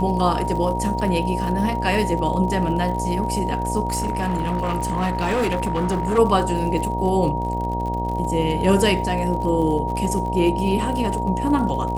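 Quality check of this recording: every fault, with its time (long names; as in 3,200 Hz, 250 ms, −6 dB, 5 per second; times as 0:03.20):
mains buzz 60 Hz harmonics 15 −26 dBFS
surface crackle 58 per second −29 dBFS
whistle 940 Hz −25 dBFS
0:03.88–0:06.19: clipping −17.5 dBFS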